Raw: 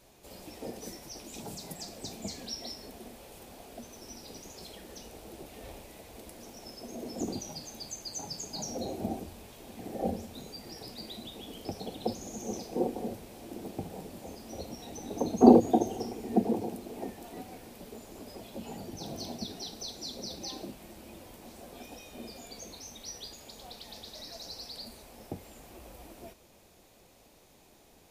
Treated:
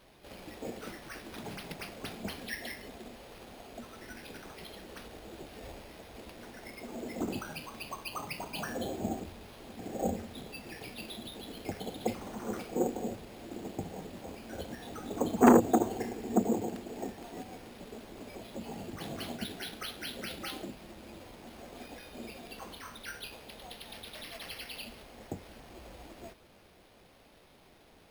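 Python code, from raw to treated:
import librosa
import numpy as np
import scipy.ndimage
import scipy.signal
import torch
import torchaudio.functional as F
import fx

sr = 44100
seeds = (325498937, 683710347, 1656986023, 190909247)

y = np.repeat(x[::6], 6)[:len(x)]
y = fx.transformer_sat(y, sr, knee_hz=850.0)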